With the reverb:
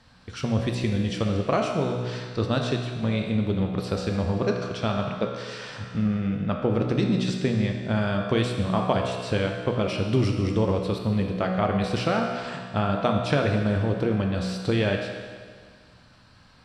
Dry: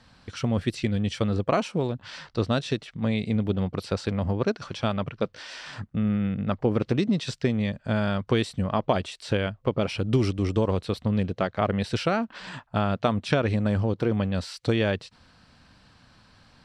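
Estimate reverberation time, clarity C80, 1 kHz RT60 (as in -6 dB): 1.8 s, 4.5 dB, 1.8 s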